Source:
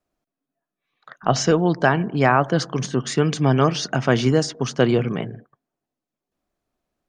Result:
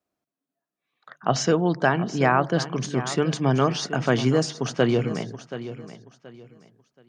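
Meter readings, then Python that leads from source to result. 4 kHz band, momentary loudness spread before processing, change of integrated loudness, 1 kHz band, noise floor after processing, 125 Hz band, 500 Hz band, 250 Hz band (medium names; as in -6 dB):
-3.0 dB, 7 LU, -3.0 dB, -3.0 dB, under -85 dBFS, -3.5 dB, -3.0 dB, -3.0 dB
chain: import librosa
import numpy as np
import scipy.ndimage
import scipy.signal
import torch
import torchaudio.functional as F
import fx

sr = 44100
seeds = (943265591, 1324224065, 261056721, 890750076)

y = scipy.signal.sosfilt(scipy.signal.butter(2, 84.0, 'highpass', fs=sr, output='sos'), x)
y = fx.hum_notches(y, sr, base_hz=50, count=3)
y = fx.echo_feedback(y, sr, ms=727, feedback_pct=27, wet_db=-13.0)
y = y * librosa.db_to_amplitude(-3.0)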